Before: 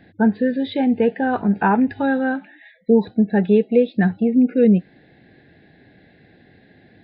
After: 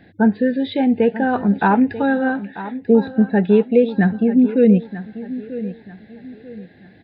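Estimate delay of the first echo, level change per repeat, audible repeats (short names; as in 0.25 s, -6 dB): 0.94 s, -9.5 dB, 3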